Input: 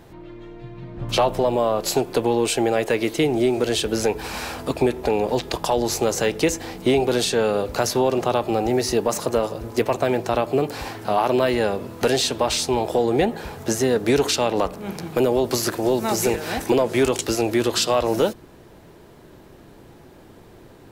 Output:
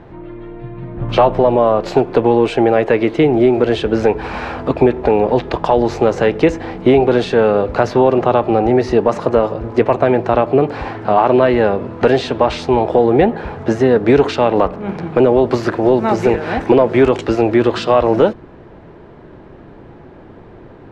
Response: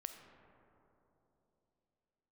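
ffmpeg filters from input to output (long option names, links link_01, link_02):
-af "lowpass=2000,volume=8dB"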